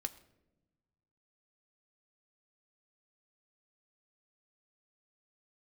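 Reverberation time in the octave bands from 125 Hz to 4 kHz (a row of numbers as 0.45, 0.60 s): 2.0, 1.6, 1.2, 0.70, 0.70, 0.55 s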